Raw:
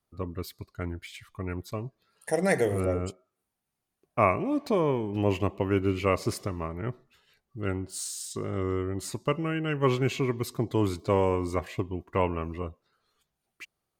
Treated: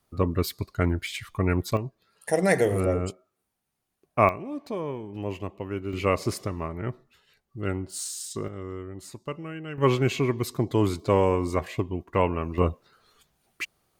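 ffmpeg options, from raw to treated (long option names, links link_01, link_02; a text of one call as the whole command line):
ffmpeg -i in.wav -af "asetnsamples=nb_out_samples=441:pad=0,asendcmd='1.77 volume volume 3dB;4.29 volume volume -6.5dB;5.93 volume volume 1.5dB;8.48 volume volume -7dB;9.78 volume volume 3dB;12.58 volume volume 12dB',volume=10dB" out.wav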